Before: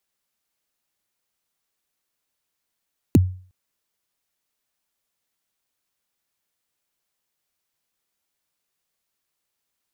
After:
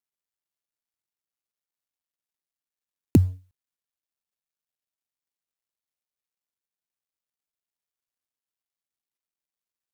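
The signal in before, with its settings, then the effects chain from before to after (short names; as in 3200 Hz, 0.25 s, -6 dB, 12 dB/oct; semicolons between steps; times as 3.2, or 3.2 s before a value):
kick drum length 0.36 s, from 370 Hz, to 92 Hz, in 26 ms, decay 0.43 s, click on, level -7 dB
G.711 law mismatch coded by A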